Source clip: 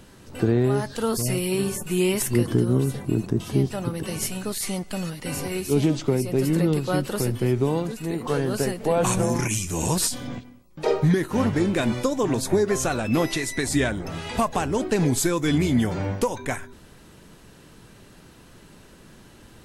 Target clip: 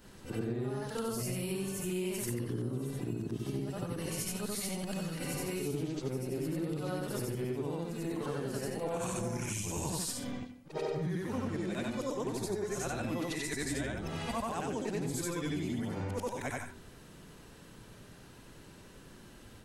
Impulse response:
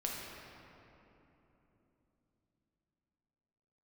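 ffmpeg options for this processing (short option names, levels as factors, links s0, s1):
-af "afftfilt=real='re':imag='-im':win_size=8192:overlap=0.75,acompressor=threshold=0.0224:ratio=5"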